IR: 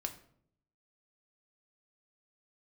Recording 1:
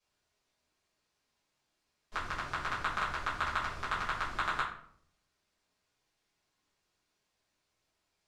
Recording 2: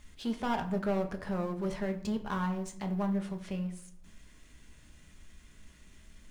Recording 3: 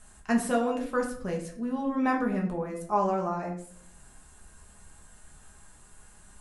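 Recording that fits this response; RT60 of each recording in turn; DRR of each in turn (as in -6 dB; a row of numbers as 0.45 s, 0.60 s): 2; 0.65 s, 0.65 s, 0.65 s; -10.5 dB, 4.5 dB, -1.0 dB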